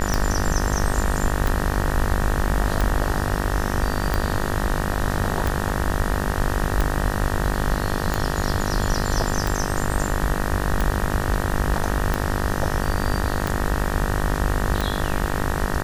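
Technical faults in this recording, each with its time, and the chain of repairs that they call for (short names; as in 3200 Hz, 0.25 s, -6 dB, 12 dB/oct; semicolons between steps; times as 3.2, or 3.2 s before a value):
buzz 50 Hz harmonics 38 -26 dBFS
tick 45 rpm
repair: de-click; de-hum 50 Hz, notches 38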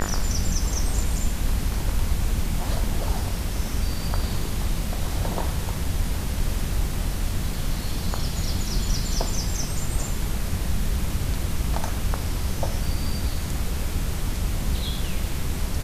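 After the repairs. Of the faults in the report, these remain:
none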